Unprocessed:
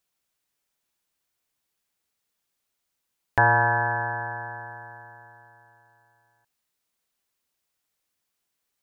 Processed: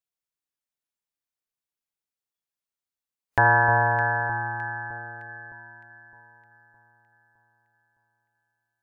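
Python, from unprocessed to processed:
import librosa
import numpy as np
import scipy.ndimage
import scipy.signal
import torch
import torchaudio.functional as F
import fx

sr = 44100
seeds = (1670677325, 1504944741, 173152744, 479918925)

y = fx.noise_reduce_blind(x, sr, reduce_db=14)
y = fx.high_shelf(y, sr, hz=3000.0, db=9.0, at=(3.45, 4.68))
y = fx.echo_alternate(y, sr, ms=306, hz=1200.0, feedback_pct=68, wet_db=-8.5)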